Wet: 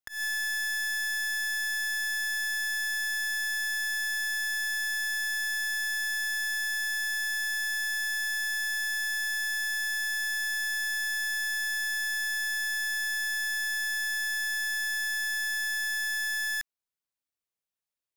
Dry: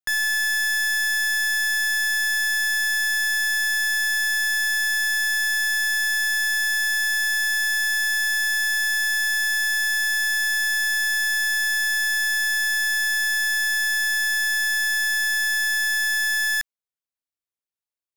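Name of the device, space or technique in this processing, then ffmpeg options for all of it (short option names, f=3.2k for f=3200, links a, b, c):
clipper into limiter: -af "asoftclip=type=hard:threshold=-27dB,alimiter=level_in=6.5dB:limit=-24dB:level=0:latency=1:release=216,volume=-6.5dB"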